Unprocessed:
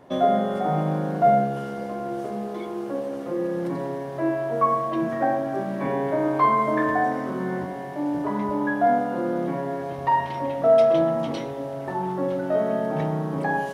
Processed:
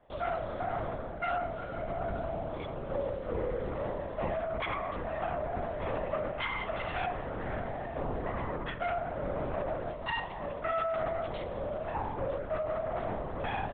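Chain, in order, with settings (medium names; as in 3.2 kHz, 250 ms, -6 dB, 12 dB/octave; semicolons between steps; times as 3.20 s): self-modulated delay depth 0.38 ms; high-pass 290 Hz 12 dB/octave; comb 1.5 ms, depth 37%; gain riding within 5 dB 0.5 s; peak limiter -15 dBFS, peak gain reduction 5 dB; LPC vocoder at 8 kHz whisper; trim -9 dB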